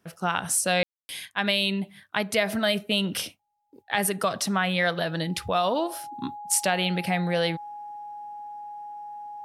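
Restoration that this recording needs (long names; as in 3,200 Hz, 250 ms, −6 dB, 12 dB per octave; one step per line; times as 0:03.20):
notch filter 830 Hz, Q 30
ambience match 0:00.83–0:01.09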